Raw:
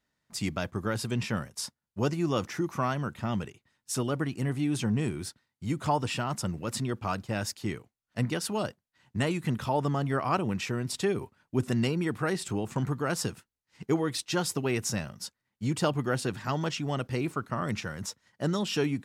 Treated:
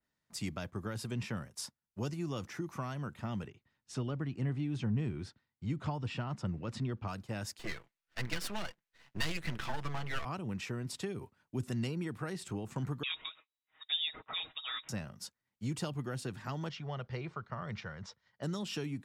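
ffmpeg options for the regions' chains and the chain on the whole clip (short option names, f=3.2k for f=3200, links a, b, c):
-filter_complex "[0:a]asettb=1/sr,asplit=3[a][b][c];[a]atrim=end=3.474[d];[b]atrim=start=3.47:end=7.08,asetpts=PTS-STARTPTS,afade=t=in:d=0.004:c=qsin,afade=t=out:st=3.606:d=0.004:c=qsin,lowpass=4.2k,lowshelf=f=190:g=5[e];[c]atrim=start=7.076[f];[d][e]acrossfade=d=0.004:c1=hsin:c2=qsin[g];[g][f]acrossfade=d=0.004:c1=qsin:c2=hsin,asettb=1/sr,asplit=3[h][i][j];[h]atrim=end=7.594[k];[i]atrim=start=7.59:end=10.25,asetpts=PTS-STARTPTS,afade=t=in:d=0.004:c=qsin,afade=t=out:st=2.656:d=0.004:c=qsin,equalizer=f=2.1k:t=o:w=2.3:g=14.5,aecho=1:1:6:0.45,atrim=end_sample=117306,aeval=exprs='max(val(0),0)':c=same[l];[j]atrim=start=10.246[m];[k][l]acrossfade=d=0.004:c1=hsin:c2=qsin[n];[n][m]acrossfade=d=0.004:c1=qsin:c2=hsin,asettb=1/sr,asplit=3[o][p][q];[o]atrim=end=13.034[r];[p]atrim=start=13.03:end=14.89,asetpts=PTS-STARTPTS,afade=t=in:d=0.004:c=qsin,afade=t=out:st=1.856:d=0.004:c=qsin,equalizer=f=120:w=0.37:g=-8.5,aecho=1:1:6.1:0.81,atrim=end_sample=82026,lowpass=f=3.3k:t=q:w=0.5098,lowpass=f=3.3k:t=q:w=0.6013,lowpass=f=3.3k:t=q:w=0.9,lowpass=f=3.3k:t=q:w=2.563,afreqshift=-3900[s];[q]atrim=start=14.886[t];[r][s]acrossfade=d=0.004:c1=hsin:c2=qsin[u];[u][t]acrossfade=d=0.004:c1=qsin:c2=hsin,asettb=1/sr,asplit=3[v][w][x];[v]atrim=end=16.694[y];[w]atrim=start=16.69:end=18.43,asetpts=PTS-STARTPTS,afade=t=in:d=0.004:c=qsin,afade=t=out:st=1.736:d=0.004:c=qsin,lowpass=f=5.1k:w=0.5412,lowpass=f=5.1k:w=1.3066,equalizer=f=280:w=2.9:g=-15,bandreject=f=2.6k:w=13[z];[x]atrim=start=18.426[aa];[y][z]acrossfade=d=0.004:c1=hsin:c2=qsin[ab];[ab][aa]acrossfade=d=0.004:c1=qsin:c2=hsin,acrossover=split=190|3000[ac][ad][ae];[ad]acompressor=threshold=-32dB:ratio=6[af];[ac][af][ae]amix=inputs=3:normalize=0,adynamicequalizer=threshold=0.00398:dfrequency=2900:dqfactor=0.7:tfrequency=2900:tqfactor=0.7:attack=5:release=100:ratio=0.375:range=2.5:mode=cutabove:tftype=highshelf,volume=-6dB"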